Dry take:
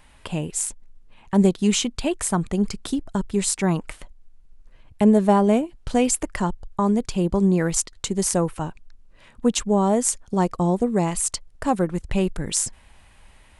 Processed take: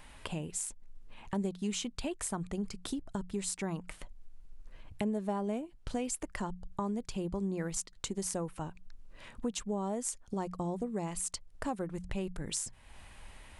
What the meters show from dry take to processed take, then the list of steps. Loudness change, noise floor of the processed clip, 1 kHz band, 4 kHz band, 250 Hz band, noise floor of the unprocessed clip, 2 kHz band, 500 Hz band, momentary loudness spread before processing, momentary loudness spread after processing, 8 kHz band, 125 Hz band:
−14.5 dB, −56 dBFS, −15.0 dB, −12.5 dB, −15.5 dB, −52 dBFS, −12.5 dB, −15.5 dB, 9 LU, 10 LU, −13.0 dB, −15.0 dB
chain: mains-hum notches 60/120/180 Hz
downward compressor 2.5 to 1, threshold −40 dBFS, peak gain reduction 18.5 dB

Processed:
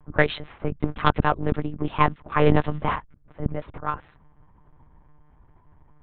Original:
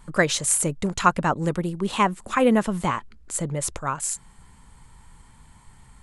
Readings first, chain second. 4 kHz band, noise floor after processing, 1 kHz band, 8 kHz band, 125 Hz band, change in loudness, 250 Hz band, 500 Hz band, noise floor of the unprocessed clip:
−4.0 dB, −56 dBFS, −0.5 dB, below −40 dB, +2.5 dB, −1.5 dB, −2.5 dB, −0.5 dB, −52 dBFS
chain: harmonic generator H 5 −21 dB, 7 −17 dB, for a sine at −2.5 dBFS
sine wavefolder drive 10 dB, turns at 0.5 dBFS
one-pitch LPC vocoder at 8 kHz 150 Hz
low-pass that shuts in the quiet parts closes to 990 Hz, open at −2 dBFS
level −9.5 dB

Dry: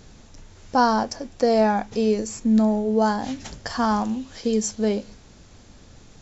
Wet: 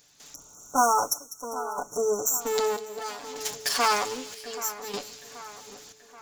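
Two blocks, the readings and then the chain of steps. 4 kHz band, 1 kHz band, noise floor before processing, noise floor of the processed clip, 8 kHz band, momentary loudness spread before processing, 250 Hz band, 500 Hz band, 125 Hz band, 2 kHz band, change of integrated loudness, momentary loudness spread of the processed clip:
+2.5 dB, −2.5 dB, −49 dBFS, −54 dBFS, can't be measured, 10 LU, −19.5 dB, −6.5 dB, −20.0 dB, −1.0 dB, −5.0 dB, 21 LU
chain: lower of the sound and its delayed copy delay 6.9 ms
time-frequency box erased 0:00.34–0:02.41, 1,500–5,500 Hz
spectral tilt +4 dB per octave
gate pattern ".xxxxx.." 76 BPM −12 dB
on a send: echo with a time of its own for lows and highs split 2,300 Hz, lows 780 ms, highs 199 ms, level −14 dB

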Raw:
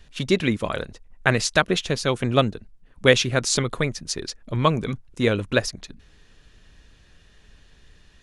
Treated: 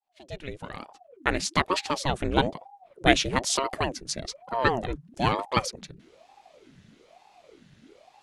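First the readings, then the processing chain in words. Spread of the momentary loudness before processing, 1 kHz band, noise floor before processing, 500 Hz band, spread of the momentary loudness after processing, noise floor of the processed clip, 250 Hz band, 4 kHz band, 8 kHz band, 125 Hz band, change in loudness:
11 LU, +1.5 dB, −54 dBFS, −7.0 dB, 17 LU, −60 dBFS, −5.5 dB, −4.0 dB, −4.5 dB, −8.5 dB, −4.0 dB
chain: fade in at the beginning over 1.78 s
ring modulator whose carrier an LFO sweeps 480 Hz, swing 70%, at 1.1 Hz
level −1 dB

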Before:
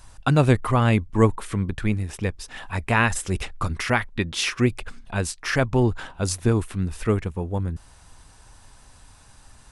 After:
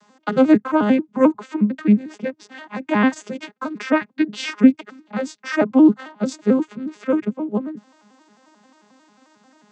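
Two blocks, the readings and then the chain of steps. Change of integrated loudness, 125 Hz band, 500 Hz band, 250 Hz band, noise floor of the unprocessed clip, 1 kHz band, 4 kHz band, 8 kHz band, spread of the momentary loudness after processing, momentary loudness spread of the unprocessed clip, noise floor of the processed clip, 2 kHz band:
+4.0 dB, −10.5 dB, +3.5 dB, +9.0 dB, −51 dBFS, +0.5 dB, −4.0 dB, can't be measured, 16 LU, 10 LU, −60 dBFS, −1.5 dB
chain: vocoder with an arpeggio as carrier major triad, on G#3, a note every 89 ms
high-pass filter 140 Hz
level +5.5 dB

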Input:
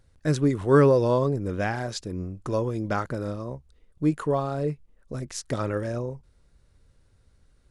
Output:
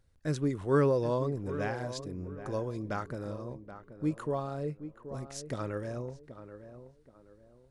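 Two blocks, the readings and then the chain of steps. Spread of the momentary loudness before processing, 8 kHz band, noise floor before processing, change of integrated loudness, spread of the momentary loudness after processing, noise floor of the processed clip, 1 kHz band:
17 LU, −8.0 dB, −62 dBFS, −8.0 dB, 21 LU, −62 dBFS, −8.0 dB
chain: tape delay 778 ms, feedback 36%, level −10.5 dB, low-pass 1,400 Hz
level −8 dB

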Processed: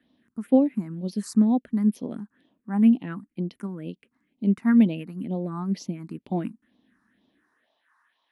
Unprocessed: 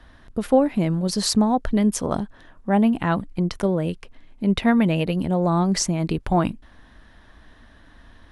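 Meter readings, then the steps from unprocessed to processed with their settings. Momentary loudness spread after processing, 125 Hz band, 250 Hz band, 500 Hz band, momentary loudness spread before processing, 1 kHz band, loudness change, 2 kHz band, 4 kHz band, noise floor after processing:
17 LU, −7.5 dB, −1.5 dB, −9.0 dB, 10 LU, −13.0 dB, −3.0 dB, −10.5 dB, below −15 dB, −77 dBFS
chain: all-pass phaser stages 4, 2.1 Hz, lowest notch 510–1,600 Hz
high-pass filter sweep 230 Hz → 1,000 Hz, 0:07.30–0:07.85
expander for the loud parts 1.5 to 1, over −26 dBFS
level −4.5 dB

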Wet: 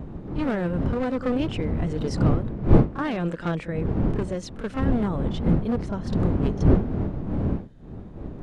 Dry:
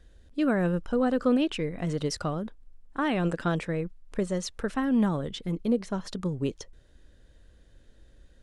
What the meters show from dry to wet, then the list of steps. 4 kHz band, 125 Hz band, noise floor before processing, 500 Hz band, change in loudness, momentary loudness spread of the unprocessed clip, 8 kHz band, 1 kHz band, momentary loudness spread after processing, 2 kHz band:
−2.5 dB, +10.0 dB, −57 dBFS, +2.5 dB, +3.5 dB, 10 LU, can't be measured, +1.5 dB, 11 LU, −0.5 dB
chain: wavefolder on the positive side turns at −23.5 dBFS
wind on the microphone 210 Hz −25 dBFS
high-shelf EQ 5,500 Hz −10.5 dB
backwards echo 30 ms −11 dB

